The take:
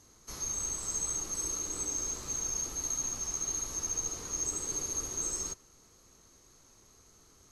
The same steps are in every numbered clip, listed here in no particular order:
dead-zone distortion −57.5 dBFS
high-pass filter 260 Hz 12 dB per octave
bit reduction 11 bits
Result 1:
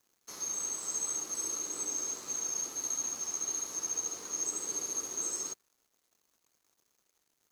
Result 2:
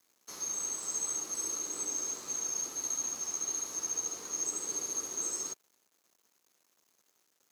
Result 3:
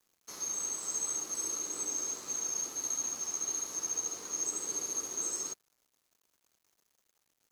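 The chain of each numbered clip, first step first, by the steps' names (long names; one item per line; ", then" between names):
bit reduction, then high-pass filter, then dead-zone distortion
dead-zone distortion, then bit reduction, then high-pass filter
high-pass filter, then dead-zone distortion, then bit reduction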